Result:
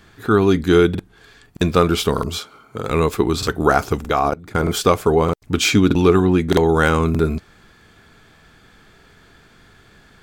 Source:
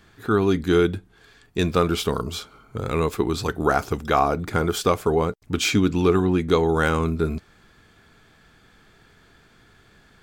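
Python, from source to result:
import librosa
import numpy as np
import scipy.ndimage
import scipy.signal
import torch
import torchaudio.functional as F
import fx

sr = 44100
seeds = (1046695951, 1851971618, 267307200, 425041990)

y = fx.highpass(x, sr, hz=260.0, slope=6, at=(2.38, 2.9))
y = fx.level_steps(y, sr, step_db=22, at=(4.08, 4.63))
y = fx.buffer_crackle(y, sr, first_s=0.9, period_s=0.62, block=2048, kind='repeat')
y = F.gain(torch.from_numpy(y), 5.0).numpy()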